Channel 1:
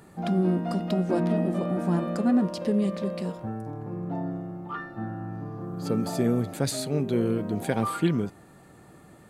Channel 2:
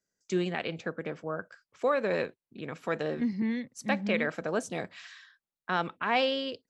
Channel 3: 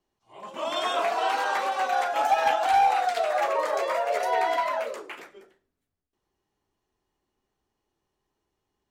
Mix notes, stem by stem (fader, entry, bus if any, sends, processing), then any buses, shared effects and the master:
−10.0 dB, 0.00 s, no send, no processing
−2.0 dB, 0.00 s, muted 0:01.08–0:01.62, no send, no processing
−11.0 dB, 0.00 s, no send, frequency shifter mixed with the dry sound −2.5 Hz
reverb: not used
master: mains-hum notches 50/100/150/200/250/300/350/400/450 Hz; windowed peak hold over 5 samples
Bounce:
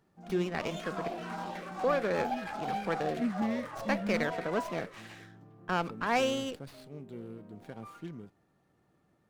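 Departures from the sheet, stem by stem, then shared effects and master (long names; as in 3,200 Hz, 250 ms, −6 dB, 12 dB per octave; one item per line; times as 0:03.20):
stem 1 −10.0 dB → −19.0 dB
master: missing mains-hum notches 50/100/150/200/250/300/350/400/450 Hz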